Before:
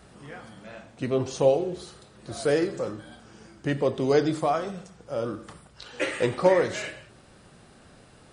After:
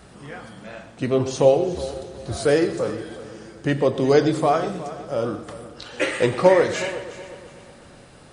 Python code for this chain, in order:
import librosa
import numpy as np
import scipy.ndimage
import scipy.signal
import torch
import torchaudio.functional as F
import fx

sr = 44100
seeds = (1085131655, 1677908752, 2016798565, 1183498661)

y = fx.peak_eq(x, sr, hz=77.0, db=14.0, octaves=0.88, at=(1.74, 2.37))
y = fx.echo_heads(y, sr, ms=122, heads='first and third', feedback_pct=51, wet_db=-16)
y = y * librosa.db_to_amplitude(5.0)